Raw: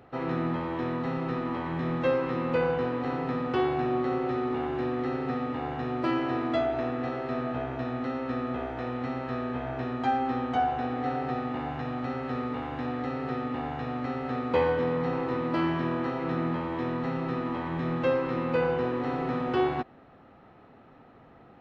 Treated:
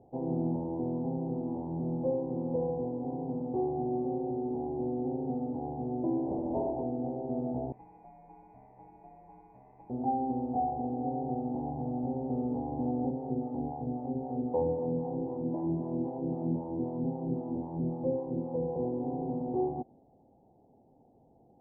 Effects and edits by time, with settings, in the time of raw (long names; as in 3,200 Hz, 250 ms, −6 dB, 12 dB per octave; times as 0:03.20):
0:06.27–0:06.83: highs frequency-modulated by the lows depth 0.85 ms
0:07.72–0:09.90: voice inversion scrambler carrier 2,700 Hz
0:13.10–0:18.76: two-band tremolo in antiphase 3.8 Hz, crossover 520 Hz
whole clip: elliptic low-pass filter 840 Hz, stop band 40 dB; dynamic equaliser 210 Hz, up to +4 dB, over −43 dBFS, Q 0.75; speech leveller 2 s; level −4.5 dB